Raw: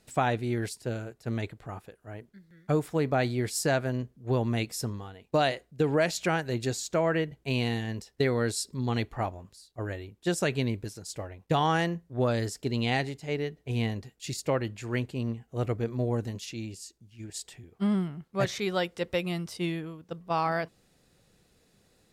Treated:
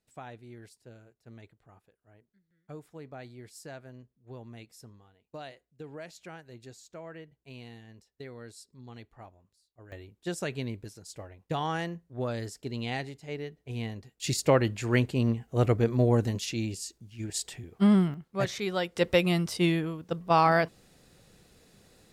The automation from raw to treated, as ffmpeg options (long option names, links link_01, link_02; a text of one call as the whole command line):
ffmpeg -i in.wav -af "asetnsamples=nb_out_samples=441:pad=0,asendcmd='9.92 volume volume -6dB;14.2 volume volume 5.5dB;18.14 volume volume -1.5dB;18.96 volume volume 6dB',volume=-18dB" out.wav